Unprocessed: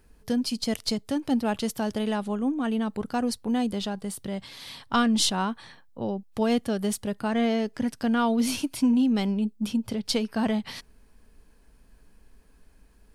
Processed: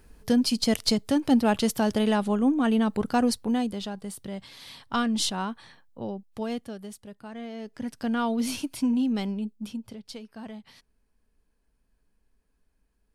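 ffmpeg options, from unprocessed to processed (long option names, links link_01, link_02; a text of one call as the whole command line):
ffmpeg -i in.wav -af "volume=15dB,afade=type=out:start_time=3.23:duration=0.51:silence=0.421697,afade=type=out:start_time=6.01:duration=0.89:silence=0.298538,afade=type=in:start_time=7.52:duration=0.55:silence=0.281838,afade=type=out:start_time=9.14:duration=0.97:silence=0.251189" out.wav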